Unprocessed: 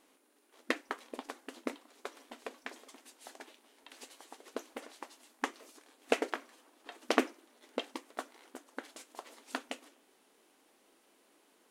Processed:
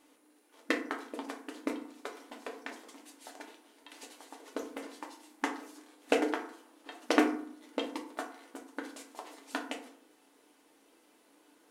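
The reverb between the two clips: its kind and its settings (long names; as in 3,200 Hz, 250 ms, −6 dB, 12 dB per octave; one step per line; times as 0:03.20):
feedback delay network reverb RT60 0.59 s, low-frequency decay 1.4×, high-frequency decay 0.5×, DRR 1.5 dB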